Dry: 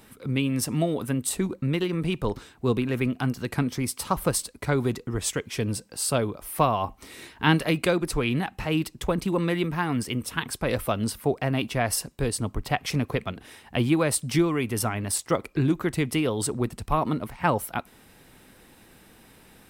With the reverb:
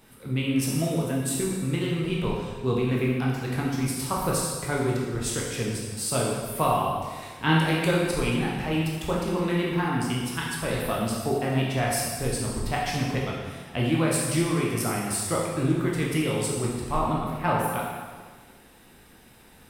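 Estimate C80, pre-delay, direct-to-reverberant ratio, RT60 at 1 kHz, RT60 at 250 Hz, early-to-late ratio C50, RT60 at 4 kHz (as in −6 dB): 2.0 dB, 9 ms, −4.0 dB, 1.5 s, 1.6 s, 0.5 dB, 1.4 s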